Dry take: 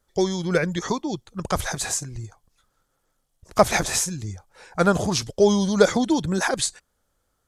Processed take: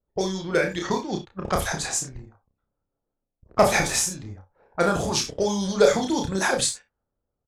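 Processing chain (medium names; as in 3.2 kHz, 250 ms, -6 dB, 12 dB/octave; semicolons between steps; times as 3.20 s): harmonic-percussive split harmonic -7 dB; gated-style reverb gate 80 ms rising, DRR 8 dB; waveshaping leveller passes 1; doubling 31 ms -4 dB; level-controlled noise filter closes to 650 Hz, open at -17 dBFS; trim -4 dB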